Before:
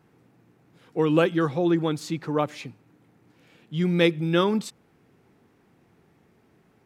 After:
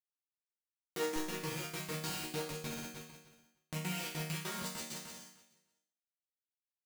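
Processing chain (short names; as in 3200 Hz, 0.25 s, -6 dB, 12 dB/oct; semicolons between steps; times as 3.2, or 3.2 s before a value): rattling part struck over -29 dBFS, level -21 dBFS; high shelf 7400 Hz +7 dB; bit-crush 10-bit; Schmitt trigger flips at -33.5 dBFS; high shelf 2500 Hz +8.5 dB; flutter echo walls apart 10.4 m, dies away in 1.1 s; step gate ".x.xxx.x" 199 bpm; compressor 12:1, threshold -33 dBFS, peak gain reduction 14.5 dB; HPF 210 Hz 12 dB/oct, from 1.16 s 44 Hz; resonator bank D#3 minor, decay 0.59 s; gain +16 dB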